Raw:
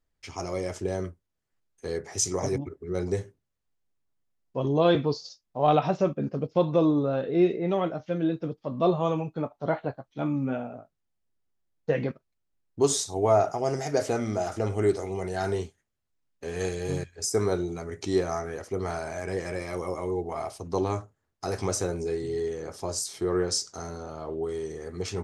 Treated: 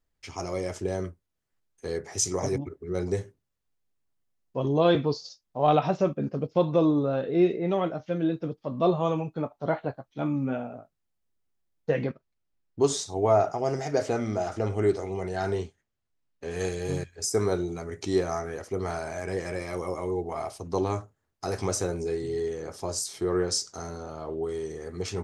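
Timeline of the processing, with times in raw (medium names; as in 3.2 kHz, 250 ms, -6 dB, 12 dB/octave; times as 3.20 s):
12.06–16.51 s: distance through air 54 m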